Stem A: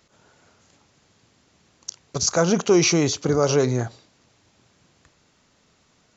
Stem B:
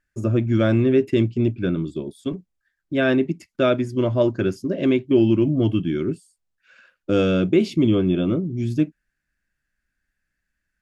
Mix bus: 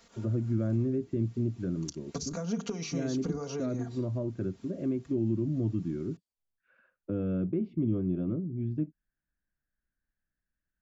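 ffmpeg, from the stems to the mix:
-filter_complex "[0:a]acompressor=threshold=0.0447:ratio=10,bandreject=f=50:t=h:w=6,bandreject=f=100:t=h:w=6,bandreject=f=150:t=h:w=6,bandreject=f=200:t=h:w=6,bandreject=f=250:t=h:w=6,bandreject=f=300:t=h:w=6,bandreject=f=350:t=h:w=6,bandreject=f=400:t=h:w=6,bandreject=f=450:t=h:w=6,aecho=1:1:4.3:0.74,volume=1[s0];[1:a]lowpass=1200,volume=0.398[s1];[s0][s1]amix=inputs=2:normalize=0,acrossover=split=270[s2][s3];[s3]acompressor=threshold=0.00891:ratio=3[s4];[s2][s4]amix=inputs=2:normalize=0"

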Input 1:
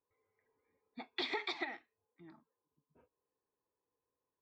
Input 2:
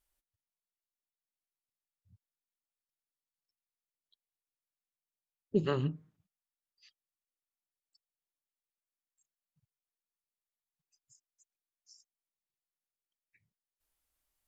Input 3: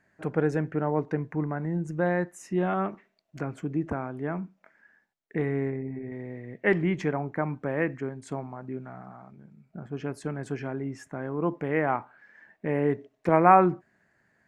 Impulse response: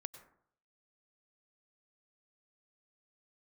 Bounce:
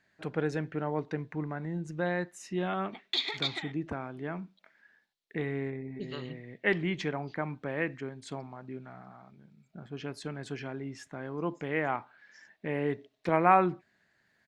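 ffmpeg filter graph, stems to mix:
-filter_complex "[0:a]afwtdn=0.00158,asoftclip=type=hard:threshold=0.0355,adelay=1950,volume=0.708[s0];[1:a]adelay=450,volume=0.266[s1];[2:a]volume=0.501[s2];[s0][s1][s2]amix=inputs=3:normalize=0,equalizer=f=3800:t=o:w=1.2:g=15"

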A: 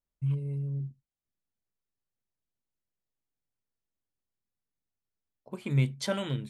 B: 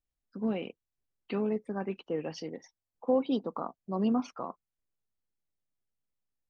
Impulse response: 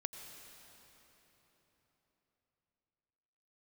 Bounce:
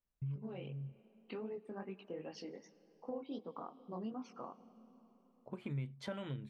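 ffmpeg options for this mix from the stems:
-filter_complex "[0:a]bass=f=250:g=1,treble=f=4000:g=-15,volume=0.841[s0];[1:a]flanger=delay=16:depth=6.8:speed=2.6,volume=0.473,asplit=3[s1][s2][s3];[s2]volume=0.282[s4];[s3]apad=whole_len=286566[s5];[s0][s5]sidechaincompress=threshold=0.002:ratio=8:attack=16:release=307[s6];[2:a]atrim=start_sample=2205[s7];[s4][s7]afir=irnorm=-1:irlink=0[s8];[s6][s1][s8]amix=inputs=3:normalize=0,acompressor=threshold=0.00794:ratio=3"

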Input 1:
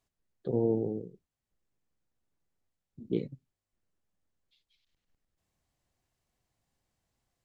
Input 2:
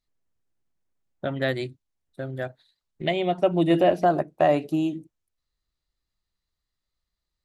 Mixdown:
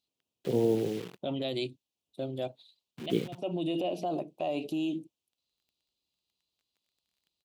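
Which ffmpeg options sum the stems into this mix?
-filter_complex "[0:a]adynamicequalizer=threshold=0.00631:dfrequency=240:dqfactor=3:tfrequency=240:tqfactor=3:attack=5:release=100:ratio=0.375:range=3:mode=cutabove:tftype=bell,acrusher=bits=9:dc=4:mix=0:aa=0.000001,volume=1.26,asplit=2[s0][s1];[1:a]firequalizer=gain_entry='entry(150,0);entry(250,5);entry(660,4);entry(1000,1);entry(1700,-20);entry(2500,2);entry(3900,4)':delay=0.05:min_phase=1,acompressor=threshold=0.158:ratio=6,alimiter=limit=0.1:level=0:latency=1:release=30,volume=0.562[s2];[s1]apad=whole_len=332558[s3];[s2][s3]sidechaincompress=threshold=0.00355:ratio=8:attack=11:release=129[s4];[s0][s4]amix=inputs=2:normalize=0,highpass=110,equalizer=f=3000:w=1.3:g=9"

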